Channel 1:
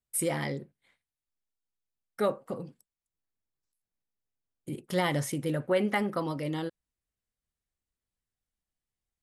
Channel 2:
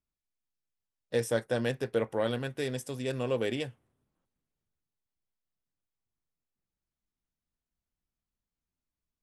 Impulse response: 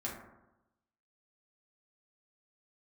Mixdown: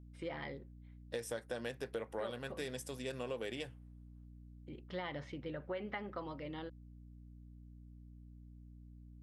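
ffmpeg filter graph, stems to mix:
-filter_complex "[0:a]lowpass=frequency=3900:width=0.5412,lowpass=frequency=3900:width=1.3066,lowshelf=frequency=220:gain=-10.5,volume=-8.5dB[link_01];[1:a]lowshelf=frequency=260:gain=-9.5,aeval=exprs='val(0)+0.00316*(sin(2*PI*60*n/s)+sin(2*PI*2*60*n/s)/2+sin(2*PI*3*60*n/s)/3+sin(2*PI*4*60*n/s)/4+sin(2*PI*5*60*n/s)/5)':channel_layout=same,volume=-3.5dB[link_02];[link_01][link_02]amix=inputs=2:normalize=0,acompressor=threshold=-37dB:ratio=6"

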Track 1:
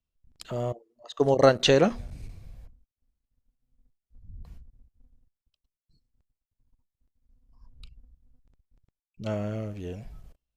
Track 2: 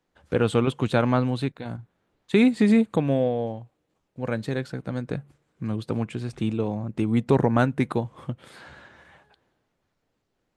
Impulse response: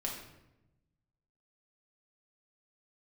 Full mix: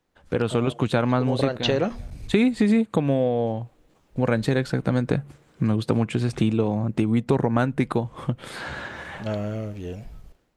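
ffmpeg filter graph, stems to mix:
-filter_complex "[0:a]acrossover=split=5100[link_01][link_02];[link_02]acompressor=threshold=-56dB:ratio=4:attack=1:release=60[link_03];[link_01][link_03]amix=inputs=2:normalize=0,volume=3dB[link_04];[1:a]dynaudnorm=framelen=260:gausssize=5:maxgain=15dB,volume=1.5dB,asplit=2[link_05][link_06];[link_06]apad=whole_len=465994[link_07];[link_04][link_07]sidechaincompress=threshold=-17dB:ratio=8:attack=16:release=115[link_08];[link_08][link_05]amix=inputs=2:normalize=0,acompressor=threshold=-21dB:ratio=2.5"

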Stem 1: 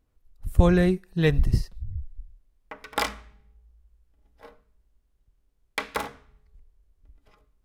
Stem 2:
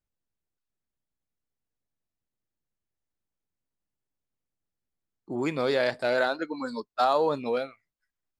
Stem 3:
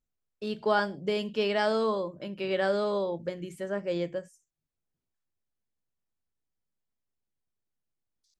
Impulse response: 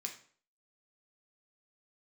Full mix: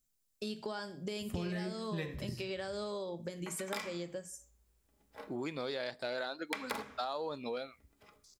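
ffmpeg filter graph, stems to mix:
-filter_complex "[0:a]highpass=frequency=70:width=0.5412,highpass=frequency=70:width=1.3066,adelay=750,volume=-2.5dB,asplit=2[link_01][link_02];[link_02]volume=-4dB[link_03];[1:a]equalizer=frequency=3900:width_type=o:width=0.77:gain=7,volume=-5.5dB,asplit=2[link_04][link_05];[link_05]volume=-22.5dB[link_06];[2:a]acompressor=threshold=-37dB:ratio=3,bass=frequency=250:gain=3,treble=frequency=4000:gain=14,volume=-2.5dB,asplit=3[link_07][link_08][link_09];[link_08]volume=-5.5dB[link_10];[link_09]apad=whole_len=370306[link_11];[link_01][link_11]sidechaincompress=threshold=-51dB:ratio=8:attack=16:release=248[link_12];[3:a]atrim=start_sample=2205[link_13];[link_03][link_06][link_10]amix=inputs=3:normalize=0[link_14];[link_14][link_13]afir=irnorm=-1:irlink=0[link_15];[link_12][link_04][link_07][link_15]amix=inputs=4:normalize=0,acompressor=threshold=-36dB:ratio=4"

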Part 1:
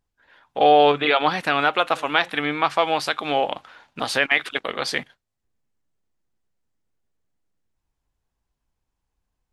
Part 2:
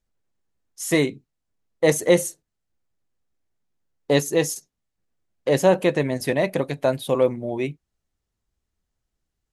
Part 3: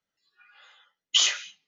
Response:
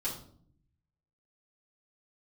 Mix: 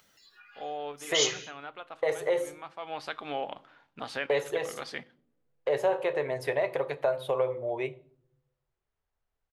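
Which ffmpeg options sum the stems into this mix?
-filter_complex "[0:a]highshelf=frequency=5000:gain=-10.5,volume=-12dB,afade=type=in:start_time=2.77:duration=0.3:silence=0.281838,asplit=3[link_01][link_02][link_03];[link_02]volume=-18.5dB[link_04];[1:a]firequalizer=gain_entry='entry(130,0);entry(190,-18);entry(420,8);entry(1100,10);entry(6000,-5)':delay=0.05:min_phase=1,adelay=200,volume=-10.5dB,asplit=2[link_05][link_06];[link_06]volume=-15.5dB[link_07];[2:a]acompressor=mode=upward:threshold=-41dB:ratio=2.5,highshelf=frequency=4900:gain=5.5,volume=-6dB[link_08];[link_03]apad=whole_len=73898[link_09];[link_08][link_09]sidechaincompress=threshold=-41dB:ratio=8:attack=16:release=112[link_10];[link_01][link_05]amix=inputs=2:normalize=0,acompressor=threshold=-26dB:ratio=6,volume=0dB[link_11];[3:a]atrim=start_sample=2205[link_12];[link_04][link_07]amix=inputs=2:normalize=0[link_13];[link_13][link_12]afir=irnorm=-1:irlink=0[link_14];[link_10][link_11][link_14]amix=inputs=3:normalize=0"

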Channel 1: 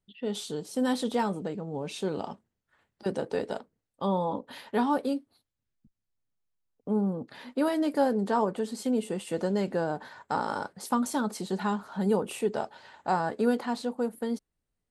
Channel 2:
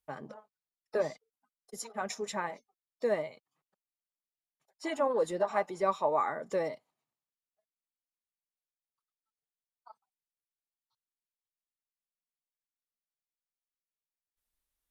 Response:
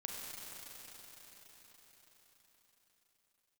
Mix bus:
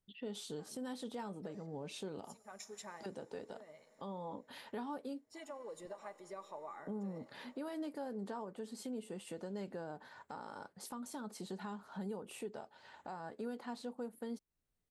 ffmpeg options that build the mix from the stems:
-filter_complex "[0:a]acompressor=threshold=-44dB:ratio=1.5,volume=-3.5dB,asplit=2[link_01][link_02];[1:a]acompressor=threshold=-30dB:ratio=6,highshelf=frequency=5900:gain=10.5,adelay=500,volume=-15.5dB,asplit=2[link_03][link_04];[link_04]volume=-11dB[link_05];[link_02]apad=whole_len=679424[link_06];[link_03][link_06]sidechaincompress=threshold=-46dB:ratio=8:attack=34:release=285[link_07];[2:a]atrim=start_sample=2205[link_08];[link_05][link_08]afir=irnorm=-1:irlink=0[link_09];[link_01][link_07][link_09]amix=inputs=3:normalize=0,alimiter=level_in=10.5dB:limit=-24dB:level=0:latency=1:release=442,volume=-10.5dB"

